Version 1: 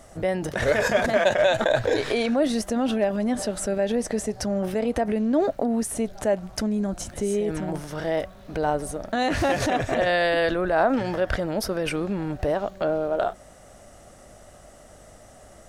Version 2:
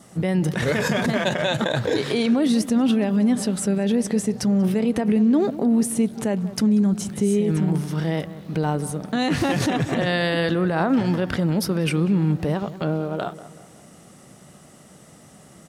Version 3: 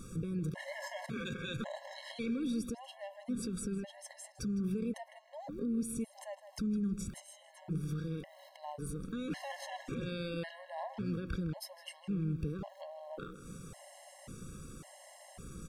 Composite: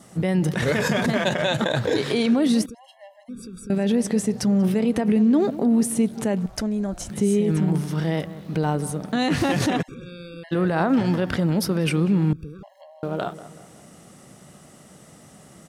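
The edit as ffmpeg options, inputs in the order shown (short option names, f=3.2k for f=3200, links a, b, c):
-filter_complex "[2:a]asplit=3[a][b][c];[1:a]asplit=5[d][e][f][g][h];[d]atrim=end=2.662[i];[a]atrim=start=2.658:end=3.702[j];[e]atrim=start=3.698:end=6.462[k];[0:a]atrim=start=6.458:end=7.102[l];[f]atrim=start=7.098:end=9.83[m];[b]atrim=start=9.81:end=10.53[n];[g]atrim=start=10.51:end=12.332[o];[c]atrim=start=12.328:end=13.032[p];[h]atrim=start=13.028[q];[i][j]acrossfade=d=0.004:c1=hsin:c2=hsin[r];[r][k]acrossfade=d=0.004:c1=hsin:c2=hsin[s];[s][l]acrossfade=d=0.004:c1=hsin:c2=hsin[t];[t][m]acrossfade=d=0.004:c1=hsin:c2=hsin[u];[u][n]acrossfade=d=0.02:c1=tri:c2=tri[v];[v][o]acrossfade=d=0.02:c1=tri:c2=tri[w];[w][p]acrossfade=d=0.004:c1=hsin:c2=hsin[x];[x][q]acrossfade=d=0.004:c1=hsin:c2=hsin"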